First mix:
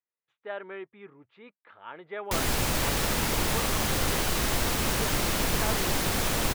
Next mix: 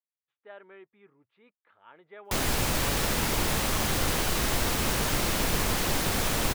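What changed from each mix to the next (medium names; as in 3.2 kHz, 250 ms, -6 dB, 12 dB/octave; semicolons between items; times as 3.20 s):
speech -10.5 dB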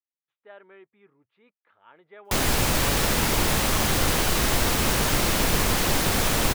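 background +4.5 dB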